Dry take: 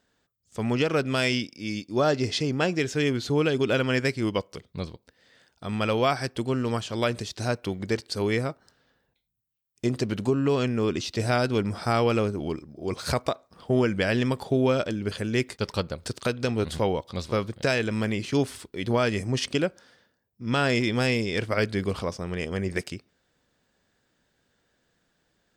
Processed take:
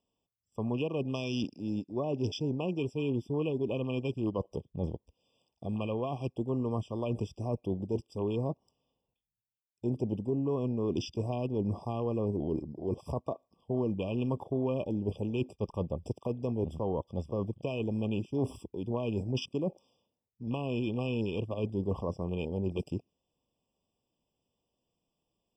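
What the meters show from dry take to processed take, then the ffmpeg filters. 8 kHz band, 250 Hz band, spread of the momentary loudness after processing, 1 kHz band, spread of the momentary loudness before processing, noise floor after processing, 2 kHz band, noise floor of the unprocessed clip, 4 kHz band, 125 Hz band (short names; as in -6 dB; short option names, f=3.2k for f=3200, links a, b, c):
under -15 dB, -5.5 dB, 5 LU, -11.5 dB, 9 LU, under -85 dBFS, -19.0 dB, -73 dBFS, -14.0 dB, -5.0 dB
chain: -filter_complex "[0:a]areverse,acompressor=threshold=-35dB:ratio=4,areverse,afwtdn=0.00794,acrossover=split=420[a][b];[b]acompressor=threshold=-40dB:ratio=4[c];[a][c]amix=inputs=2:normalize=0,afftfilt=real='re*eq(mod(floor(b*sr/1024/1200),2),0)':imag='im*eq(mod(floor(b*sr/1024/1200),2),0)':win_size=1024:overlap=0.75,volume=5.5dB"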